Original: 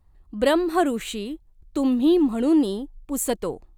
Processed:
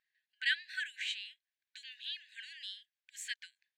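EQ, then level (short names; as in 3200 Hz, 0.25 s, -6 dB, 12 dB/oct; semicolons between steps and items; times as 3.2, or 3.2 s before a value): brick-wall FIR high-pass 1500 Hz; air absorption 170 m; +1.0 dB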